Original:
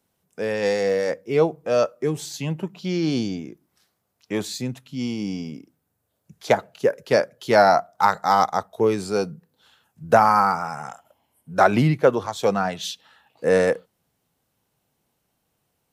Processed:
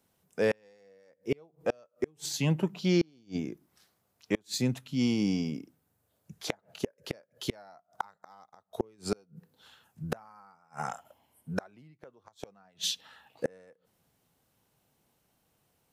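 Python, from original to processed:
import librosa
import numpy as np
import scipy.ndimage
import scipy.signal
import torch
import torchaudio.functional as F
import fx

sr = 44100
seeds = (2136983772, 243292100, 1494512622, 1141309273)

y = fx.gate_flip(x, sr, shuts_db=-16.0, range_db=-37)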